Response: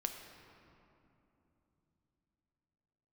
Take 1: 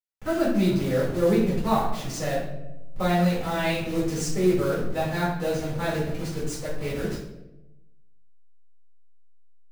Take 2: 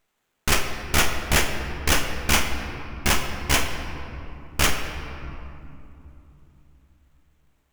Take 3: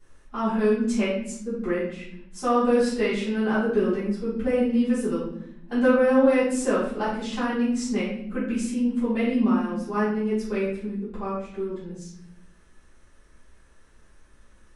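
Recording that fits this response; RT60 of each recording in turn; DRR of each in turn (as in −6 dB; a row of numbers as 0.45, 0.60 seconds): 2; 0.95, 3.0, 0.75 seconds; −8.5, 4.0, −14.0 decibels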